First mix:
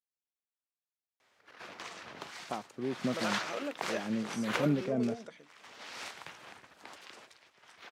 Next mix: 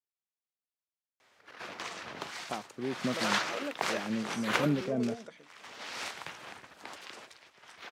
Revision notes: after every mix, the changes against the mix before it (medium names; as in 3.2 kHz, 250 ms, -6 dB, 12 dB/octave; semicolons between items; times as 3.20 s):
background +4.5 dB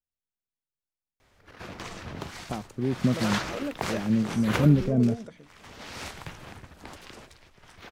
master: remove frequency weighting A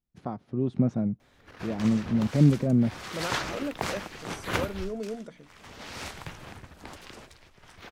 first voice: entry -2.25 s